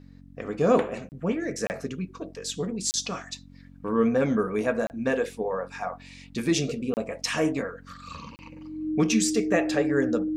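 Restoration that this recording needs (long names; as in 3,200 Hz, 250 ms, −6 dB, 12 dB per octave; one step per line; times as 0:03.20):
hum removal 46 Hz, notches 6
notch filter 310 Hz, Q 30
repair the gap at 0:01.09/0:01.67/0:02.91/0:04.87/0:06.94/0:08.36, 29 ms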